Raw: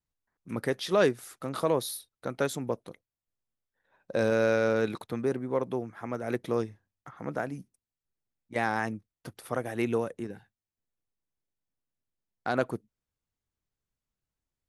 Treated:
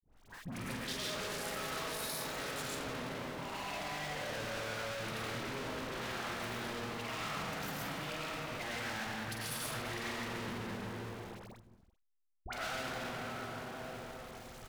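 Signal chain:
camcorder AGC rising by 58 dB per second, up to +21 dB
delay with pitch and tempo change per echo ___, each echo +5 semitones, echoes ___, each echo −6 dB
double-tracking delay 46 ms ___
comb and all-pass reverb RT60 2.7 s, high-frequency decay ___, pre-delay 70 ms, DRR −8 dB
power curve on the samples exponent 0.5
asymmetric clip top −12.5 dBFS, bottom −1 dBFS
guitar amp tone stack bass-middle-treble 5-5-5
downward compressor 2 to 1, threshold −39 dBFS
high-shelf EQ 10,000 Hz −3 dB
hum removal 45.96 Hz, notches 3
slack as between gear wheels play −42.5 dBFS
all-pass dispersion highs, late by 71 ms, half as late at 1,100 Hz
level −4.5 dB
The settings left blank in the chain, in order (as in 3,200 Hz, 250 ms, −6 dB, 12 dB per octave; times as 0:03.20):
528 ms, 2, −7.5 dB, 0.4×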